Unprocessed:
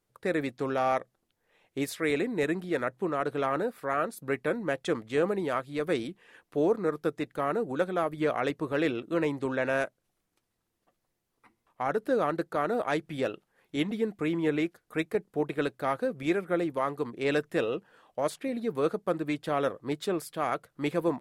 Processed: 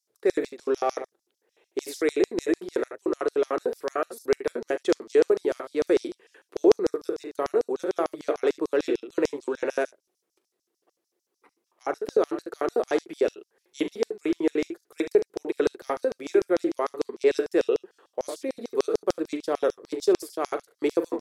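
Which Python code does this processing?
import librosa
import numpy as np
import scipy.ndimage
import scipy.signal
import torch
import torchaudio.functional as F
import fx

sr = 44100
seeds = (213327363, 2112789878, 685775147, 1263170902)

y = fx.room_early_taps(x, sr, ms=(41, 71), db=(-12.0, -12.0))
y = fx.filter_lfo_highpass(y, sr, shape='square', hz=6.7, low_hz=380.0, high_hz=5500.0, q=4.3)
y = y * 10.0 ** (-1.0 / 20.0)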